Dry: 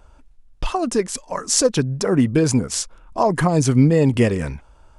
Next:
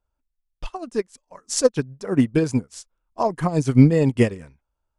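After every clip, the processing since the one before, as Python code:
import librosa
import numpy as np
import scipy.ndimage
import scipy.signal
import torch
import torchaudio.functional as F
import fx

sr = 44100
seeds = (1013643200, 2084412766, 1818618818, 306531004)

y = fx.upward_expand(x, sr, threshold_db=-32.0, expansion=2.5)
y = y * librosa.db_to_amplitude(3.0)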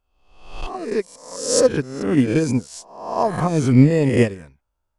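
y = fx.spec_swells(x, sr, rise_s=0.71)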